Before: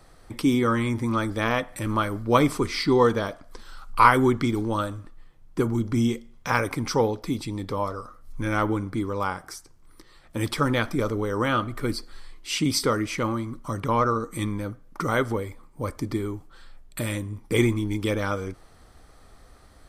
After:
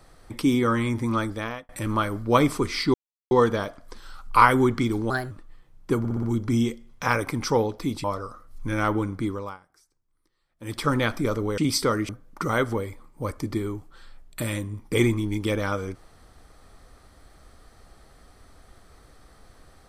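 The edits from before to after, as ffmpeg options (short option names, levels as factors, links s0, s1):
-filter_complex "[0:a]asplit=14[s0][s1][s2][s3][s4][s5][s6][s7][s8][s9][s10][s11][s12][s13];[s0]atrim=end=1.69,asetpts=PTS-STARTPTS,afade=t=out:st=1.19:d=0.5[s14];[s1]atrim=start=1.69:end=2.94,asetpts=PTS-STARTPTS,afade=t=in:d=0.004:c=hsin,afade=t=out:st=1.246:d=0.004:c=hsin,apad=pad_dur=0.37[s15];[s2]atrim=start=2.94:end=4.734,asetpts=PTS-STARTPTS,afade=t=in:d=0.004:c=hsin[s16];[s3]atrim=start=4.73:end=4.99,asetpts=PTS-STARTPTS,asetrate=54684,aresample=44100[s17];[s4]atrim=start=4.986:end=5.732[s18];[s5]atrim=start=5.668:end=5.732[s19];[s6]atrim=start=5.668:end=5.732[s20];[s7]atrim=start=5.668:end=5.732[s21];[s8]atrim=start=5.668:end=7.482[s22];[s9]atrim=start=7.778:end=9.32,asetpts=PTS-STARTPTS,afade=t=out:st=1.242:d=0.3:silence=0.0841395[s23];[s10]atrim=start=9.32:end=10.31,asetpts=PTS-STARTPTS,volume=0.0841[s24];[s11]atrim=start=10.31:end=11.322,asetpts=PTS-STARTPTS,afade=t=in:d=0.3:silence=0.0841395[s25];[s12]atrim=start=12.588:end=13.102[s26];[s13]atrim=start=14.678[s27];[s14][s15][s16]concat=n=3:v=0:a=1[s28];[s28][s17]acrossfade=d=0.004:c1=hsin:c2=hsin[s29];[s29][s18]acrossfade=d=0.004:c1=hsin:c2=hsin[s30];[s30][s19]acrossfade=d=0.004:c1=hsin:c2=hsin[s31];[s31][s20]acrossfade=d=0.004:c1=hsin:c2=hsin[s32];[s32][s21]acrossfade=d=0.004:c1=hsin:c2=hsin[s33];[s33][s22]acrossfade=d=0.004:c1=hsin:c2=hsin[s34];[s23][s24][s25]concat=n=3:v=0:a=1[s35];[s34][s35]acrossfade=d=0.004:c1=hsin:c2=hsin[s36];[s36][s26]acrossfade=d=0.004:c1=hsin:c2=hsin[s37];[s37][s27]acrossfade=d=0.004:c1=hsin:c2=hsin"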